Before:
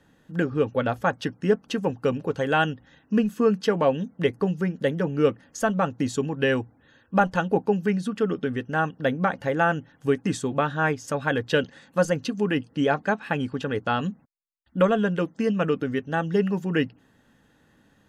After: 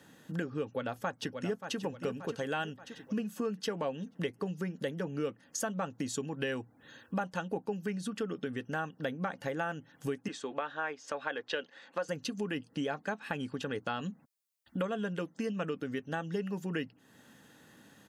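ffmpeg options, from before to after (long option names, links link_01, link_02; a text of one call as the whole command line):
ffmpeg -i in.wav -filter_complex "[0:a]asplit=2[link_01][link_02];[link_02]afade=type=in:start_time=0.64:duration=0.01,afade=type=out:start_time=1.77:duration=0.01,aecho=0:1:580|1160|1740|2320|2900:0.281838|0.126827|0.0570723|0.0256825|0.0115571[link_03];[link_01][link_03]amix=inputs=2:normalize=0,asettb=1/sr,asplit=3[link_04][link_05][link_06];[link_04]atrim=end=10.284[link_07];[link_05]atrim=start=10.28:end=12.09,asetpts=PTS-STARTPTS,afade=type=in:duration=0.004:curve=qsin,afade=type=out:start_time=1.806:duration=0.004:curve=qsin,highpass=420,lowpass=3600[link_08];[link_06]atrim=start=12.086[link_09];[link_07][link_08]acrossfade=duration=0.004:curve1=hsin:curve2=qsin[link_10];[link_10][link_09]acrossfade=duration=0.004:curve1=qsin:curve2=hsin,highpass=120,highshelf=frequency=4100:gain=9,acompressor=threshold=-39dB:ratio=3,volume=2dB" out.wav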